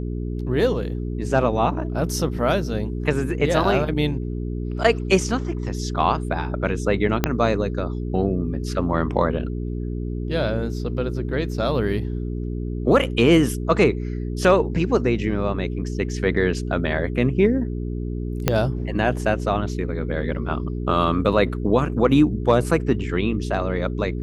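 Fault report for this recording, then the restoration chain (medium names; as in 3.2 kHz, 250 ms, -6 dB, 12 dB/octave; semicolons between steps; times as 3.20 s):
hum 60 Hz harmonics 7 -27 dBFS
7.24 s: pop -3 dBFS
18.48 s: pop -3 dBFS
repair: de-click; de-hum 60 Hz, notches 7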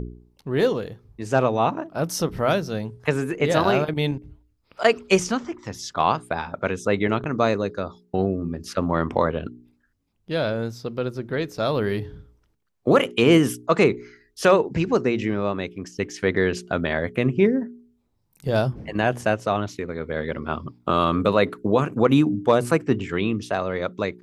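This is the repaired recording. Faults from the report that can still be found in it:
7.24 s: pop
18.48 s: pop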